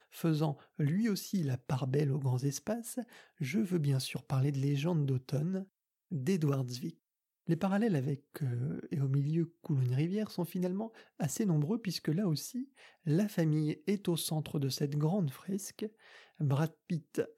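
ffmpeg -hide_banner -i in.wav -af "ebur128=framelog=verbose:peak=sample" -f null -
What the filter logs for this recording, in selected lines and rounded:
Integrated loudness:
  I:         -34.1 LUFS
  Threshold: -44.4 LUFS
Loudness range:
  LRA:         1.4 LU
  Threshold: -54.4 LUFS
  LRA low:   -35.1 LUFS
  LRA high:  -33.7 LUFS
Sample peak:
  Peak:      -18.6 dBFS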